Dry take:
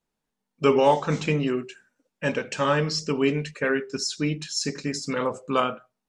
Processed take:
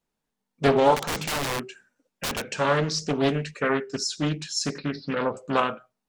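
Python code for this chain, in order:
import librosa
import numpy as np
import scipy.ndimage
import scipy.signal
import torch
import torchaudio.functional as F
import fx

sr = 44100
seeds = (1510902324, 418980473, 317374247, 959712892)

y = fx.overflow_wrap(x, sr, gain_db=22.5, at=(0.96, 2.51))
y = fx.steep_lowpass(y, sr, hz=4500.0, slope=72, at=(4.78, 5.37))
y = fx.doppler_dist(y, sr, depth_ms=0.56)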